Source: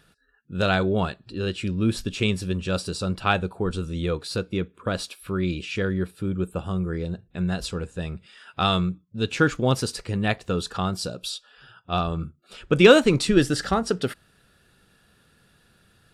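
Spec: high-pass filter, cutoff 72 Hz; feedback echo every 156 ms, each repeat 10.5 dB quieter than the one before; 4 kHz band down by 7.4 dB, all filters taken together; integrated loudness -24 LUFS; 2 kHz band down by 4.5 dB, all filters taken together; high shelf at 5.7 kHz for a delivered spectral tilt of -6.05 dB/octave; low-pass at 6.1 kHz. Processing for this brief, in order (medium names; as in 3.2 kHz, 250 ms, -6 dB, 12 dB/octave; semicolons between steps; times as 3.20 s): high-pass 72 Hz; low-pass 6.1 kHz; peaking EQ 2 kHz -5 dB; peaking EQ 4 kHz -8.5 dB; treble shelf 5.7 kHz +4.5 dB; feedback delay 156 ms, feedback 30%, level -10.5 dB; trim +1.5 dB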